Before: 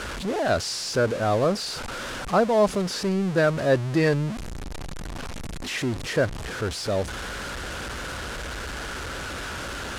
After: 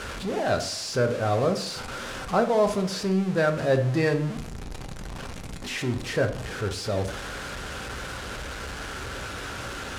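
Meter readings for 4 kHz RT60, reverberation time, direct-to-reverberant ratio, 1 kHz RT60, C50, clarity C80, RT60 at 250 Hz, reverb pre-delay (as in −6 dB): 0.35 s, 0.65 s, 4.5 dB, 0.60 s, 11.5 dB, 14.5 dB, 0.70 s, 3 ms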